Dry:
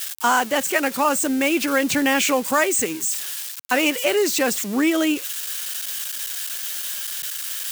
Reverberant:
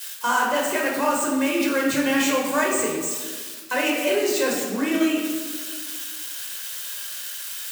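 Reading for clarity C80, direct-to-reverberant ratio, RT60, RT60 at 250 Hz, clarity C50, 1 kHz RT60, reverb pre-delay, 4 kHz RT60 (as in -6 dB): 4.5 dB, -2.0 dB, 1.6 s, 2.0 s, 2.0 dB, 1.5 s, 13 ms, 0.95 s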